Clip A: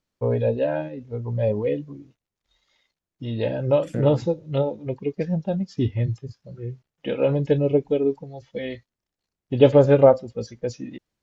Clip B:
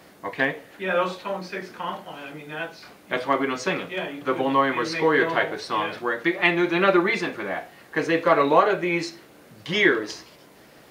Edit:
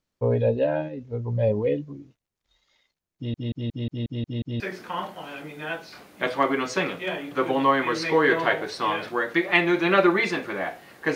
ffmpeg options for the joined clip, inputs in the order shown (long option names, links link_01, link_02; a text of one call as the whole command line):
ffmpeg -i cue0.wav -i cue1.wav -filter_complex "[0:a]apad=whole_dur=11.15,atrim=end=11.15,asplit=8[link_01][link_02][link_03][link_04][link_05][link_06][link_07][link_08];[link_01]atrim=end=3.342[link_09];[link_02]atrim=start=3.158:end=3.342[link_10];[link_03]atrim=start=3.158:end=3.342[link_11];[link_04]atrim=start=3.158:end=3.342[link_12];[link_05]atrim=start=3.158:end=3.342[link_13];[link_06]atrim=start=3.158:end=3.342[link_14];[link_07]atrim=start=3.158:end=3.342[link_15];[link_08]atrim=start=3.158:end=3.342[link_16];[1:a]atrim=start=1.498:end=8.05[link_17];[link_09][link_10]acrossfade=duration=0.004:curve1=hsin:curve2=hsin[link_18];[link_18][link_11]acrossfade=duration=0.004:curve1=hsin:curve2=hsin[link_19];[link_19][link_12]acrossfade=duration=0.004:curve1=hsin:curve2=hsin[link_20];[link_20][link_13]acrossfade=duration=0.004:curve1=hsin:curve2=hsin[link_21];[link_21][link_14]acrossfade=duration=0.004:curve1=hsin:curve2=hsin[link_22];[link_22][link_15]acrossfade=duration=0.004:curve1=hsin:curve2=hsin[link_23];[link_23][link_16]acrossfade=duration=0.004:curve1=hsin:curve2=hsin[link_24];[link_24][link_17]acrossfade=duration=0.004:curve1=hsin:curve2=hsin" out.wav